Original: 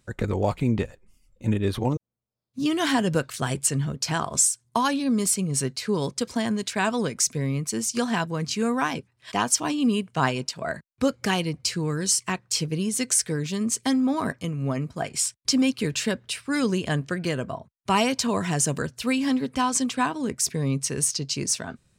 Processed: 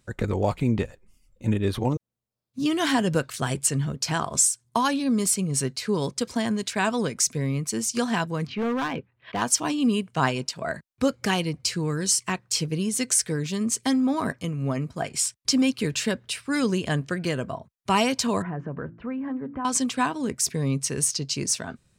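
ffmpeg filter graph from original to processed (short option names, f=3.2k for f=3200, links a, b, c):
-filter_complex "[0:a]asettb=1/sr,asplit=3[a][b][c];[a]atrim=end=8.474[d];[b]atrim=start=8.47:end=9.42,asetpts=PTS-STARTPTS,afade=t=in:d=0.004:c=qsin,afade=t=out:st=0.946:d=0.004:c=qsin,lowpass=f=3k:w=0.5412,lowpass=f=3k:w=1.3066,equalizer=f=500:w=5:g=4,asoftclip=type=hard:threshold=-22.5dB[e];[c]atrim=start=9.416[f];[d][e]acrossfade=d=0.004:c1=hsin:c2=qsin[g];[g][f]acrossfade=d=0.004:c1=qsin:c2=hsin,asettb=1/sr,asplit=3[h][i][j];[h]atrim=end=18.424[k];[i]atrim=start=18.42:end=19.65,asetpts=PTS-STARTPTS,afade=t=in:d=0.004:c=qsin,afade=t=out:st=1.226:d=0.004:c=qsin,lowpass=f=1.6k:w=0.5412,lowpass=f=1.6k:w=1.3066,bandreject=f=56.44:t=h:w=4,bandreject=f=112.88:t=h:w=4,bandreject=f=169.32:t=h:w=4,bandreject=f=225.76:t=h:w=4,bandreject=f=282.2:t=h:w=4,bandreject=f=338.64:t=h:w=4,acompressor=threshold=-30dB:ratio=2.5:attack=3.2:release=140:knee=1:detection=peak[l];[j]atrim=start=19.646[m];[k][l]acrossfade=d=0.004:c1=hsin:c2=qsin[n];[n][m]acrossfade=d=0.004:c1=qsin:c2=hsin"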